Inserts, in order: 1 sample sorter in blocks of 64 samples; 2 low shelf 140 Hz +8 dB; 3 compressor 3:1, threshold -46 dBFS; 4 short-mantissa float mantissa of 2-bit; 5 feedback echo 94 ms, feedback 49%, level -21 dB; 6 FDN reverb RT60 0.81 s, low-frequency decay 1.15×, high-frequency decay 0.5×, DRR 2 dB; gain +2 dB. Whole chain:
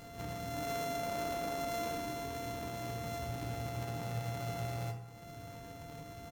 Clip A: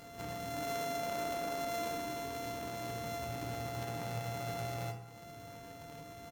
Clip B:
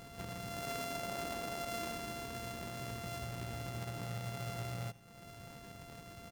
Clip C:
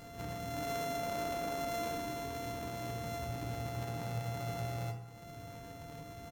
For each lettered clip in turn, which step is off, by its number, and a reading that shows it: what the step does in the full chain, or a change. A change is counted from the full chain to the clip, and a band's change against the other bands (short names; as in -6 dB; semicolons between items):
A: 2, 125 Hz band -3.5 dB; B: 6, 500 Hz band -3.5 dB; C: 4, distortion -20 dB